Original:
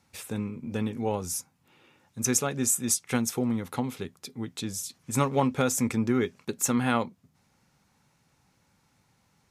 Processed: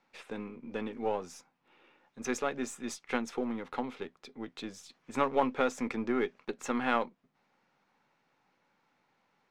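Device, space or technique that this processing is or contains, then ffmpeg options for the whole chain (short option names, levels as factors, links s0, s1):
crystal radio: -af "highpass=320,lowpass=2900,aeval=exprs='if(lt(val(0),0),0.708*val(0),val(0))':c=same"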